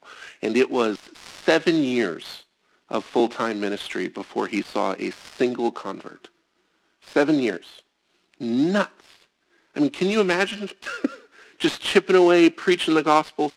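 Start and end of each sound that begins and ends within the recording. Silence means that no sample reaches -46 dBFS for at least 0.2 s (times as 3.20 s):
2.89–6.28 s
7.02–7.80 s
8.34–9.24 s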